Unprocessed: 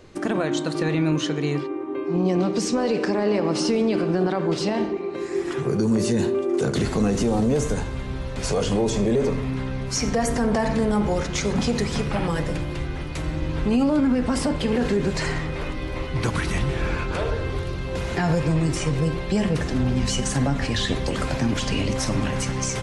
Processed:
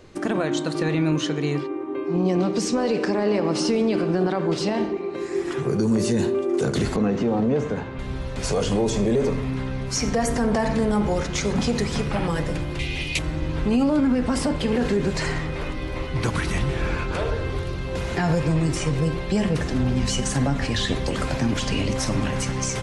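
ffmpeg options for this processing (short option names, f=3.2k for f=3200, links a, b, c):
-filter_complex "[0:a]asettb=1/sr,asplit=3[a][b][c];[a]atrim=end=6.964[d];[b]atrim=start=6.96:end=7.99,asetpts=PTS-STARTPTS,afade=t=in:d=0.004:c=qsin,afade=t=out:st=1.026:d=0.004:c=qsin,highpass=120,lowpass=2.7k[e];[c]atrim=start=7.986[f];[d][e]acrossfade=d=0.004:c1=hsin:c2=qsin[g];[g][f]acrossfade=d=0.004:c1=qsin:c2=hsin,asettb=1/sr,asplit=3[h][i][j];[h]atrim=end=12.794[k];[i]atrim=start=12.79:end=13.19,asetpts=PTS-STARTPTS,afade=t=in:d=0.004:c=qsin,afade=t=out:st=0.396:d=0.004:c=qsin,highshelf=f=1.9k:t=q:w=3:g=9.5[l];[j]atrim=start=13.186[m];[k][l]acrossfade=d=0.004:c1=hsin:c2=qsin[n];[n][m]acrossfade=d=0.004:c1=qsin:c2=hsin"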